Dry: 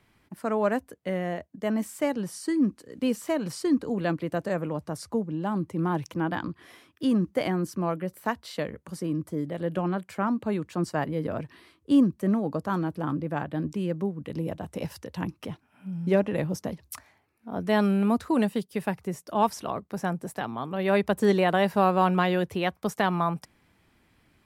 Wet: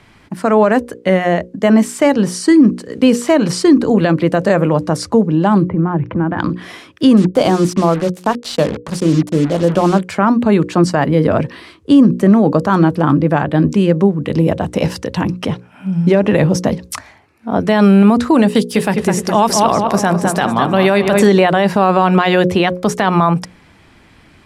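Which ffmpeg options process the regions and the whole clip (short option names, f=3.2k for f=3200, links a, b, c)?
-filter_complex "[0:a]asettb=1/sr,asplit=3[a][b][c];[a]atrim=end=5.684[d];[b]atrim=start=5.68:end=6.39,asetpts=PTS-STARTPTS,afade=t=in:d=0.004:c=qsin,afade=t=out:st=0.706:d=0.004:c=qsin,lowpass=f=2.1k:w=0.5412,lowpass=f=2.1k:w=1.3066,acompressor=threshold=-39dB:ratio=2.5:attack=3.2:release=140:knee=1:detection=peak,lowshelf=f=280:g=9[e];[c]atrim=start=6.386[f];[d][e]acrossfade=d=0.004:c1=hsin:c2=qsin[g];[g][f]acrossfade=d=0.004:c1=qsin:c2=hsin,asettb=1/sr,asplit=3[h][i][j];[h]atrim=end=7.174[k];[i]atrim=start=7.17:end=9.99,asetpts=PTS-STARTPTS,afade=t=in:d=0.004:c=qsin,afade=t=out:st=2.816:d=0.004:c=qsin,equalizer=f=2k:t=o:w=0.63:g=-12,acrusher=bits=6:mix=0:aa=0.5,bandreject=f=60:t=h:w=6,bandreject=f=120:t=h:w=6,bandreject=f=180:t=h:w=6,bandreject=f=240:t=h:w=6,bandreject=f=300:t=h:w=6,bandreject=f=360:t=h:w=6,bandreject=f=420:t=h:w=6[l];[j]atrim=start=9.986[m];[k][l]acrossfade=d=0.004:c1=hsin:c2=qsin[n];[n][m]acrossfade=d=0.004:c1=qsin:c2=hsin,asettb=1/sr,asplit=3[o][p][q];[o]atrim=end=18.554[r];[p]atrim=start=18.55:end=21.27,asetpts=PTS-STARTPTS,afade=t=in:d=0.004:c=qsin,afade=t=out:st=2.716:d=0.004:c=qsin,highshelf=f=4.4k:g=9,acompressor=mode=upward:threshold=-34dB:ratio=2.5:attack=3.2:release=140:knee=2.83:detection=peak,asplit=2[s][t];[t]adelay=207,lowpass=f=2.7k:p=1,volume=-7dB,asplit=2[u][v];[v]adelay=207,lowpass=f=2.7k:p=1,volume=0.5,asplit=2[w][x];[x]adelay=207,lowpass=f=2.7k:p=1,volume=0.5,asplit=2[y][z];[z]adelay=207,lowpass=f=2.7k:p=1,volume=0.5,asplit=2[aa][ab];[ab]adelay=207,lowpass=f=2.7k:p=1,volume=0.5,asplit=2[ac][ad];[ad]adelay=207,lowpass=f=2.7k:p=1,volume=0.5[ae];[s][u][w][y][aa][ac][ae]amix=inputs=7:normalize=0,atrim=end_sample=119952[af];[q]atrim=start=21.266[ag];[r][af]acrossfade=d=0.004:c1=hsin:c2=qsin[ah];[ah][ag]acrossfade=d=0.004:c1=qsin:c2=hsin,lowpass=8.2k,bandreject=f=60:t=h:w=6,bandreject=f=120:t=h:w=6,bandreject=f=180:t=h:w=6,bandreject=f=240:t=h:w=6,bandreject=f=300:t=h:w=6,bandreject=f=360:t=h:w=6,bandreject=f=420:t=h:w=6,bandreject=f=480:t=h:w=6,bandreject=f=540:t=h:w=6,alimiter=level_in=19dB:limit=-1dB:release=50:level=0:latency=1,volume=-1dB"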